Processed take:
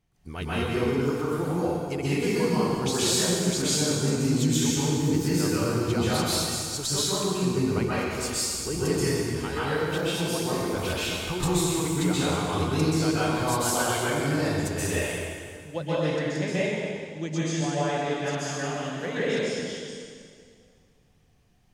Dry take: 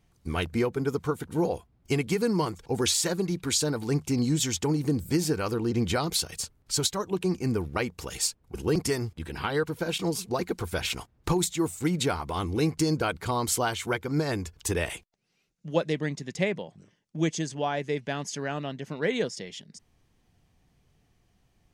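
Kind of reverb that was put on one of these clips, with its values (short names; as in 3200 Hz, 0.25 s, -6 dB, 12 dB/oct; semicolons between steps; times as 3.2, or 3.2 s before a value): plate-style reverb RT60 2.1 s, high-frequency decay 0.9×, pre-delay 0.115 s, DRR -10 dB; gain -7.5 dB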